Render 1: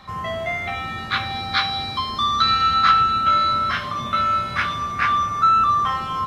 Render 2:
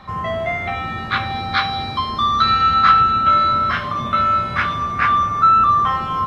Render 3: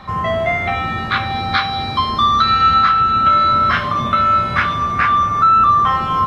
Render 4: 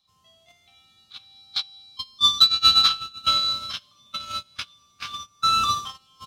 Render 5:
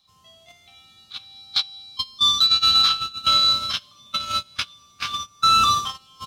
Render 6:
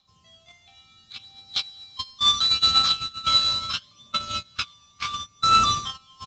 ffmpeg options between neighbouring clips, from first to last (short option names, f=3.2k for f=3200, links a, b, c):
-af "highshelf=f=3.3k:g=-11.5,volume=5dB"
-af "alimiter=limit=-9.5dB:level=0:latency=1:release=422,volume=4.5dB"
-af "agate=range=-37dB:threshold=-11dB:ratio=16:detection=peak,aexciter=amount=13.2:drive=8.7:freq=3k,volume=-8dB"
-af "alimiter=level_in=15dB:limit=-1dB:release=50:level=0:latency=1,volume=-8.5dB"
-af "aphaser=in_gain=1:out_gain=1:delay=1.2:decay=0.45:speed=0.72:type=triangular,aresample=16000,acrusher=bits=4:mode=log:mix=0:aa=0.000001,aresample=44100,volume=-3.5dB"